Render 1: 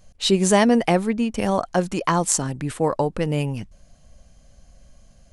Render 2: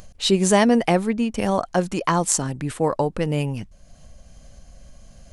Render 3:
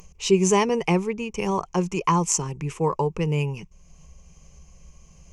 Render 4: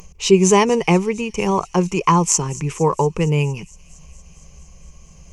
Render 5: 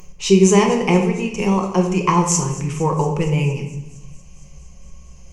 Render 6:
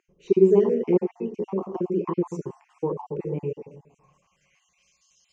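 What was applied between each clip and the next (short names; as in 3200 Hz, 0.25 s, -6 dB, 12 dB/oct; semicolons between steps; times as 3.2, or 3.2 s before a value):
upward compressor, threshold -36 dBFS
ripple EQ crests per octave 0.76, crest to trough 14 dB; gain -5 dB
thin delay 0.231 s, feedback 75%, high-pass 4600 Hz, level -17 dB; gain +6 dB
shoebox room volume 350 m³, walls mixed, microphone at 0.97 m; gain -3 dB
random spectral dropouts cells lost 36%; band-pass sweep 360 Hz -> 4200 Hz, 3.42–5.04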